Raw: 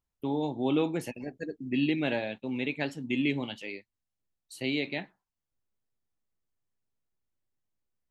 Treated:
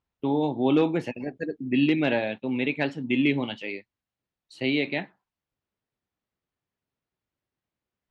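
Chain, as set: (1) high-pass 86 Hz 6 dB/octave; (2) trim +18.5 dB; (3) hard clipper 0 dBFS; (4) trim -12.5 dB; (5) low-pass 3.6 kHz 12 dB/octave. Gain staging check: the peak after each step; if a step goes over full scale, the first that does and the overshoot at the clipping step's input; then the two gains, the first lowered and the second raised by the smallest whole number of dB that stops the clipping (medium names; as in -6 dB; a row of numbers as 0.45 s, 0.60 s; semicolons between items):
-15.5 dBFS, +3.0 dBFS, 0.0 dBFS, -12.5 dBFS, -12.5 dBFS; step 2, 3.0 dB; step 2 +15.5 dB, step 4 -9.5 dB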